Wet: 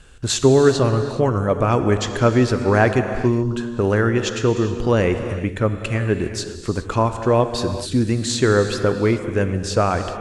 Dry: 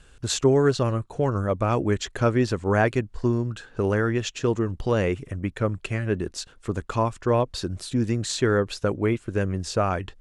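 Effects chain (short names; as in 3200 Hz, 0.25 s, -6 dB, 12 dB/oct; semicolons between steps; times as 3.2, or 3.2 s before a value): non-linear reverb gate 0.44 s flat, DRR 7.5 dB; gain +5 dB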